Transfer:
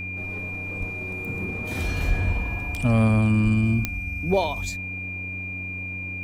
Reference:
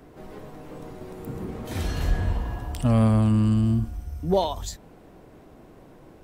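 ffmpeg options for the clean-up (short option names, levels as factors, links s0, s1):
-filter_complex "[0:a]adeclick=t=4,bandreject=f=93.4:t=h:w=4,bandreject=f=186.8:t=h:w=4,bandreject=f=280.2:t=h:w=4,bandreject=f=2400:w=30,asplit=3[s0][s1][s2];[s0]afade=t=out:st=0.79:d=0.02[s3];[s1]highpass=f=140:w=0.5412,highpass=f=140:w=1.3066,afade=t=in:st=0.79:d=0.02,afade=t=out:st=0.91:d=0.02[s4];[s2]afade=t=in:st=0.91:d=0.02[s5];[s3][s4][s5]amix=inputs=3:normalize=0,asplit=3[s6][s7][s8];[s6]afade=t=out:st=3.43:d=0.02[s9];[s7]highpass=f=140:w=0.5412,highpass=f=140:w=1.3066,afade=t=in:st=3.43:d=0.02,afade=t=out:st=3.55:d=0.02[s10];[s8]afade=t=in:st=3.55:d=0.02[s11];[s9][s10][s11]amix=inputs=3:normalize=0"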